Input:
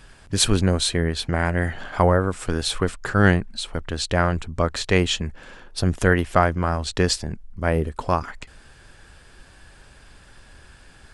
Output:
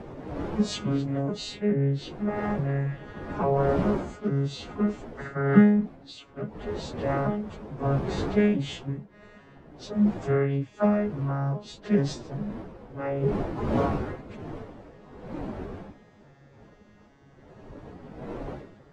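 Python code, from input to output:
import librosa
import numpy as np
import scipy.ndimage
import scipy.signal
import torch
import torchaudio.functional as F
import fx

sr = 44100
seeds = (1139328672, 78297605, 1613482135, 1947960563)

y = fx.vocoder_arp(x, sr, chord='bare fifth', root=49, every_ms=251)
y = fx.dmg_wind(y, sr, seeds[0], corner_hz=450.0, level_db=-34.0)
y = fx.stretch_vocoder_free(y, sr, factor=1.7)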